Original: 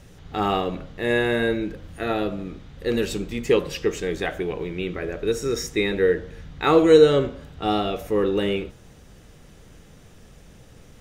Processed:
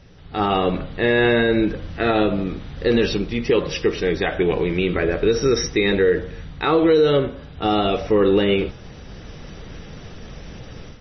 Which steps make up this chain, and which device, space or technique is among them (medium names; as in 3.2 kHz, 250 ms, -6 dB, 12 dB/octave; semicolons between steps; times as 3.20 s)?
low-bitrate web radio (level rider gain up to 12 dB; peak limiter -8 dBFS, peak gain reduction 7 dB; MP3 24 kbps 24 kHz)